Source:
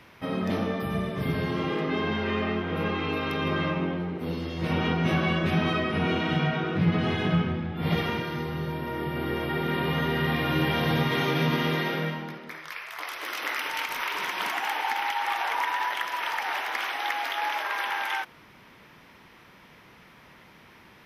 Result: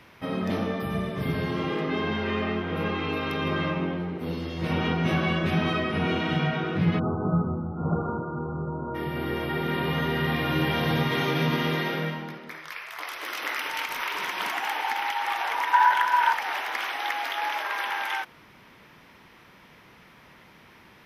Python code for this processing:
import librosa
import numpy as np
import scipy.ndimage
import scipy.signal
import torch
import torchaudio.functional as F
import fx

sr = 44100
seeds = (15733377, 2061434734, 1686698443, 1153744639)

y = fx.brickwall_lowpass(x, sr, high_hz=1500.0, at=(6.98, 8.94), fade=0.02)
y = fx.small_body(y, sr, hz=(940.0, 1500.0), ring_ms=30, db=15, at=(15.73, 16.33))